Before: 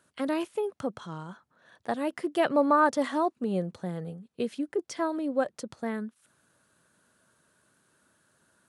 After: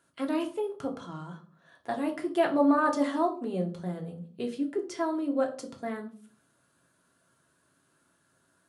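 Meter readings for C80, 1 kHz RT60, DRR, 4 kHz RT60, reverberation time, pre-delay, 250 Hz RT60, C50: 17.0 dB, 0.40 s, 1.5 dB, 0.30 s, 0.45 s, 3 ms, 0.60 s, 13.0 dB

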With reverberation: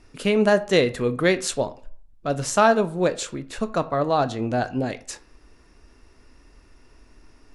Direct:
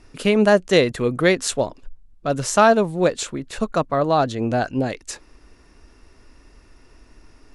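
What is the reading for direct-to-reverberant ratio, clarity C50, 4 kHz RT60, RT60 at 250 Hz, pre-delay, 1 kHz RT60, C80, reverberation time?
11.5 dB, 17.5 dB, 0.30 s, 0.45 s, 15 ms, 0.50 s, 22.0 dB, 0.50 s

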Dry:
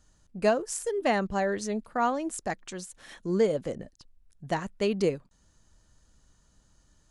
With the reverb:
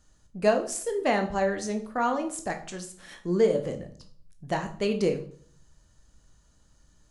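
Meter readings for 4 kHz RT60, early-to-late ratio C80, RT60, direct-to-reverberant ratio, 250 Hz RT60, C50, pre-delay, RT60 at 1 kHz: 0.45 s, 16.0 dB, 0.55 s, 5.0 dB, 0.70 s, 11.5 dB, 16 ms, 0.55 s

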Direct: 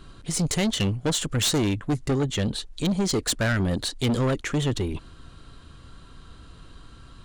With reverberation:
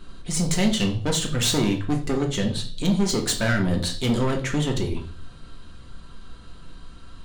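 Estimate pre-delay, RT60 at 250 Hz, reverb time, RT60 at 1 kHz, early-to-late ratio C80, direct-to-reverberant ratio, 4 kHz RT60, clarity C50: 3 ms, 0.55 s, 0.45 s, 0.40 s, 15.0 dB, 1.5 dB, 0.45 s, 10.5 dB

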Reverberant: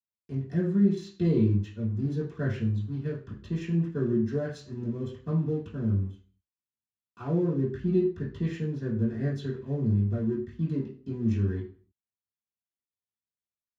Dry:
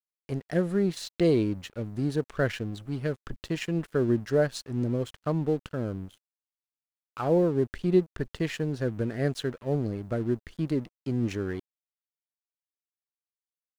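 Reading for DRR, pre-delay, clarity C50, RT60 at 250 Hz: -9.5 dB, 3 ms, 6.5 dB, 0.40 s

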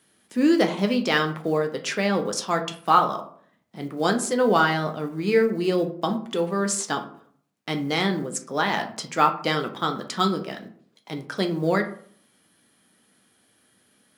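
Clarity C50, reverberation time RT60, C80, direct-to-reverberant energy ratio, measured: 11.5 dB, 0.55 s, 15.5 dB, 4.5 dB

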